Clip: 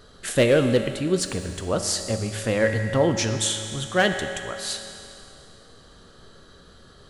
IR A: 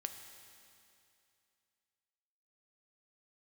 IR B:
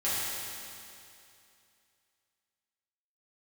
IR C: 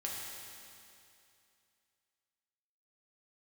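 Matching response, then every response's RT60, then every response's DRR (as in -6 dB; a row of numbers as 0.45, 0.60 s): A; 2.6, 2.6, 2.6 s; 5.5, -12.0, -4.0 dB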